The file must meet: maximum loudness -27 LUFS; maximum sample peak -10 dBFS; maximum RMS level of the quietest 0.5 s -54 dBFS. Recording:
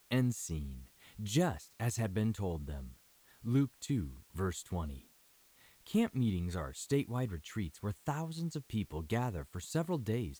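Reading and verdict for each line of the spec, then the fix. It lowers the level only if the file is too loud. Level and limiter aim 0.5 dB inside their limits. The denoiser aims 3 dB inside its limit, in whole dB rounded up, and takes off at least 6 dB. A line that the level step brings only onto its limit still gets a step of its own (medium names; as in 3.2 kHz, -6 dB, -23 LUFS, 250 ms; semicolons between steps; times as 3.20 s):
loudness -37.0 LUFS: pass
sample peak -19.0 dBFS: pass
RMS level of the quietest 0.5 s -66 dBFS: pass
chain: none needed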